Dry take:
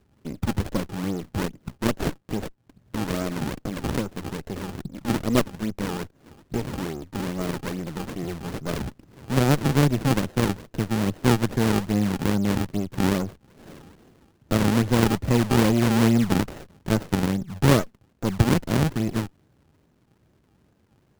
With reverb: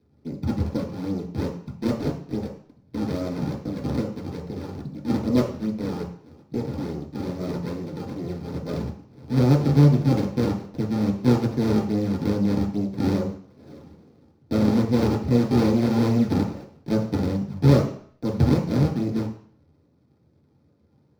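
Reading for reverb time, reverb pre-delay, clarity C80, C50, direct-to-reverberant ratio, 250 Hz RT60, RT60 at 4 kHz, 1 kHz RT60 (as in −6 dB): 0.55 s, 3 ms, 11.0 dB, 7.0 dB, −3.0 dB, 0.50 s, 0.55 s, 0.60 s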